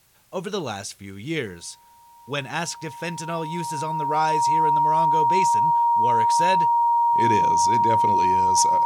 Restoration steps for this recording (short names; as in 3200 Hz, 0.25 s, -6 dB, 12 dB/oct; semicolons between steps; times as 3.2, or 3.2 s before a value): notch 940 Hz, Q 30; expander -40 dBFS, range -21 dB